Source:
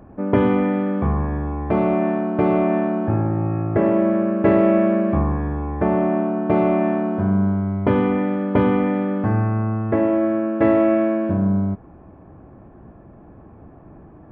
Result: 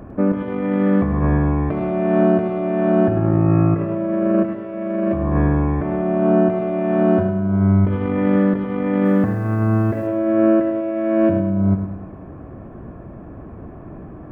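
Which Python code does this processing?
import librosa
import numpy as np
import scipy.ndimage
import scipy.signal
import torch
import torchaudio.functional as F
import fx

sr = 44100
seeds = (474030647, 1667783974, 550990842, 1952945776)

p1 = fx.over_compress(x, sr, threshold_db=-22.0, ratio=-0.5)
p2 = fx.quant_dither(p1, sr, seeds[0], bits=10, dither='none', at=(9.05, 10.07))
p3 = fx.peak_eq(p2, sr, hz=840.0, db=-7.5, octaves=0.2)
p4 = p3 + fx.echo_feedback(p3, sr, ms=103, feedback_pct=53, wet_db=-9.0, dry=0)
y = p4 * librosa.db_to_amplitude(4.0)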